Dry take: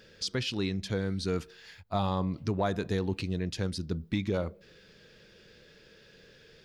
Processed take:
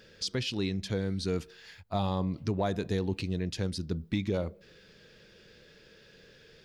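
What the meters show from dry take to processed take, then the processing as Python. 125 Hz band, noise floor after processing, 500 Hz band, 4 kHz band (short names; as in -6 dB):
0.0 dB, -58 dBFS, -0.5 dB, 0.0 dB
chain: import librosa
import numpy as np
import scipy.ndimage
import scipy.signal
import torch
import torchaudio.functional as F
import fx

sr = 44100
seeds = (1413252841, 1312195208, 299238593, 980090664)

y = fx.dynamic_eq(x, sr, hz=1300.0, q=1.5, threshold_db=-47.0, ratio=4.0, max_db=-5)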